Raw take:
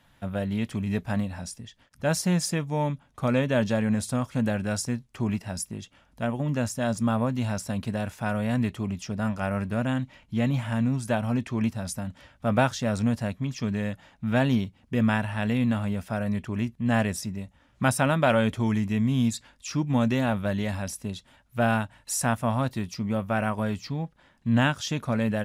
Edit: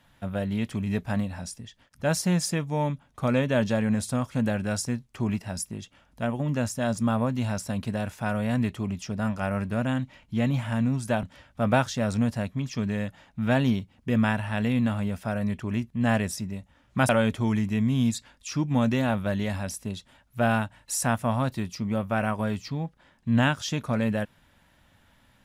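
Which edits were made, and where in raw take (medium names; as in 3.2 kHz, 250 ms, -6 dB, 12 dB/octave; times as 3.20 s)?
11.23–12.08 s: delete
17.94–18.28 s: delete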